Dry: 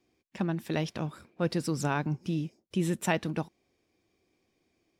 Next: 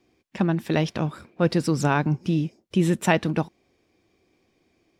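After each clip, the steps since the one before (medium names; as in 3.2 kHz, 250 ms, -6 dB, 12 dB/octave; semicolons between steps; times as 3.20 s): treble shelf 6.5 kHz -7 dB; trim +8 dB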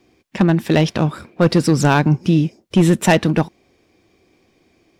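overload inside the chain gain 15 dB; trim +8.5 dB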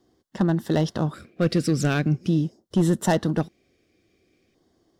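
LFO notch square 0.44 Hz 920–2400 Hz; trim -7 dB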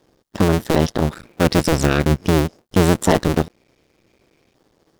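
cycle switcher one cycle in 2, muted; trim +8.5 dB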